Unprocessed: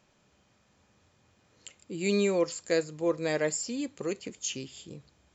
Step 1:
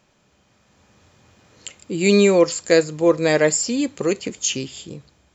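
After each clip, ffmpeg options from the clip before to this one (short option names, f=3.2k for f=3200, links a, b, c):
-af "dynaudnorm=f=230:g=7:m=6.5dB,volume=5.5dB"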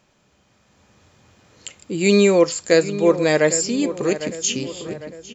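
-filter_complex "[0:a]asplit=2[a][b];[b]adelay=803,lowpass=f=2.3k:p=1,volume=-12dB,asplit=2[c][d];[d]adelay=803,lowpass=f=2.3k:p=1,volume=0.49,asplit=2[e][f];[f]adelay=803,lowpass=f=2.3k:p=1,volume=0.49,asplit=2[g][h];[h]adelay=803,lowpass=f=2.3k:p=1,volume=0.49,asplit=2[i][j];[j]adelay=803,lowpass=f=2.3k:p=1,volume=0.49[k];[a][c][e][g][i][k]amix=inputs=6:normalize=0"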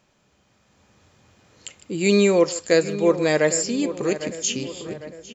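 -filter_complex "[0:a]asplit=2[a][b];[b]adelay=150,highpass=300,lowpass=3.4k,asoftclip=type=hard:threshold=-10.5dB,volume=-17dB[c];[a][c]amix=inputs=2:normalize=0,volume=-2.5dB"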